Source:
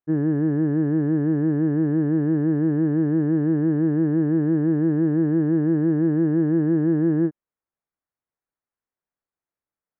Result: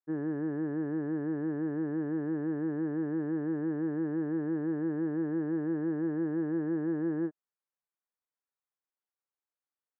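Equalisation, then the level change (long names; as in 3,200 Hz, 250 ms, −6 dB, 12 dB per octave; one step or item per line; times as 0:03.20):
resonant band-pass 1,200 Hz, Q 0.5
high-frequency loss of the air 180 metres
notch filter 650 Hz, Q 12
−4.5 dB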